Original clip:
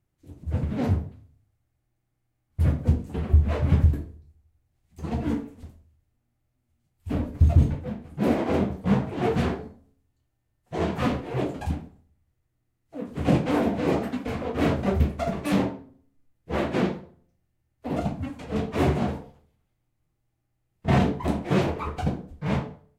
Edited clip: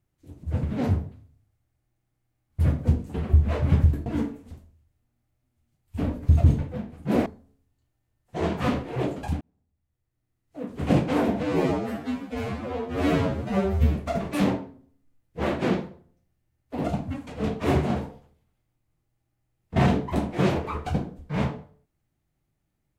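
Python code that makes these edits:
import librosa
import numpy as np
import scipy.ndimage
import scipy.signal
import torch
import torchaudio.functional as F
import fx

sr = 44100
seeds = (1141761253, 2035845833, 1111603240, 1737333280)

y = fx.edit(x, sr, fx.cut(start_s=4.06, length_s=1.12),
    fx.cut(start_s=8.38, length_s=1.26),
    fx.fade_in_span(start_s=11.79, length_s=1.21),
    fx.stretch_span(start_s=13.81, length_s=1.26, factor=2.0), tone=tone)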